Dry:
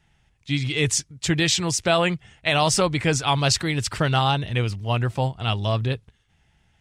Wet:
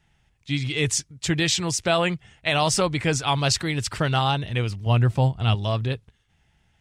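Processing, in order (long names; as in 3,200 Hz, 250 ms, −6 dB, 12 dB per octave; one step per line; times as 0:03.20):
0:04.86–0:05.55: low-shelf EQ 260 Hz +8 dB
level −1.5 dB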